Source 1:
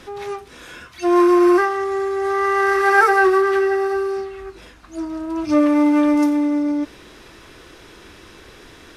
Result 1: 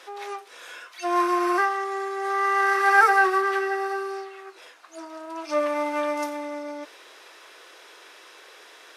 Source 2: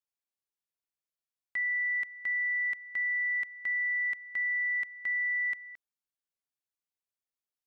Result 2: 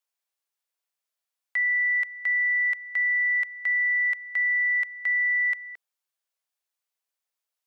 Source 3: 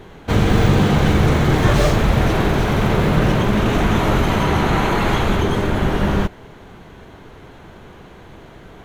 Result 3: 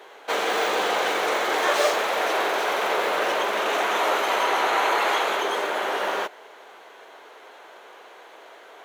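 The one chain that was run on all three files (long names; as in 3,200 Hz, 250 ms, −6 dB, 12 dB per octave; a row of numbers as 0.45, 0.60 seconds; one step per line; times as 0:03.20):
high-pass filter 480 Hz 24 dB per octave
loudness normalisation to −23 LKFS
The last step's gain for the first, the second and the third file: −2.5, +6.5, −0.5 decibels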